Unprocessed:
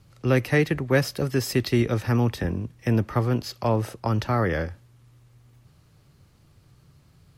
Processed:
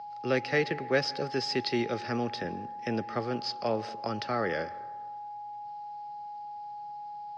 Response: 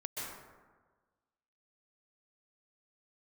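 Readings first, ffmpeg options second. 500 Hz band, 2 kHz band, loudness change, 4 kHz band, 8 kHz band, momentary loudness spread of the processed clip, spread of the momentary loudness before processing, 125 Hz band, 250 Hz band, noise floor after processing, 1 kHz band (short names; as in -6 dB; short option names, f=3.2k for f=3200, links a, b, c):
-4.5 dB, -3.5 dB, -8.0 dB, 0.0 dB, -10.5 dB, 13 LU, 6 LU, -16.5 dB, -8.5 dB, -41 dBFS, 0.0 dB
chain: -filter_complex "[0:a]aeval=exprs='val(0)+0.0251*sin(2*PI*830*n/s)':c=same,highpass=260,equalizer=f=300:t=q:w=4:g=-5,equalizer=f=970:t=q:w=4:g=-9,equalizer=f=4.9k:t=q:w=4:g=9,lowpass=f=5.4k:w=0.5412,lowpass=f=5.4k:w=1.3066,asplit=2[a][b];[1:a]atrim=start_sample=2205,lowpass=4.5k[c];[b][c]afir=irnorm=-1:irlink=0,volume=-18.5dB[d];[a][d]amix=inputs=2:normalize=0,volume=-4dB"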